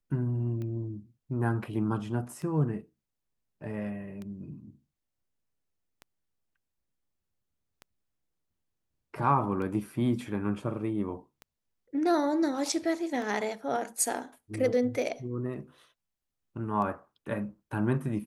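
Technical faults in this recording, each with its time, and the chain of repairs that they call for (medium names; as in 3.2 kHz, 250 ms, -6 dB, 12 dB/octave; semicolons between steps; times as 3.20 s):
tick 33 1/3 rpm -28 dBFS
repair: de-click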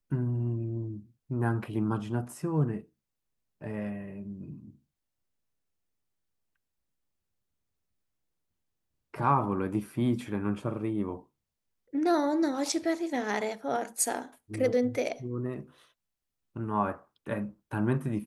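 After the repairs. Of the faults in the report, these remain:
nothing left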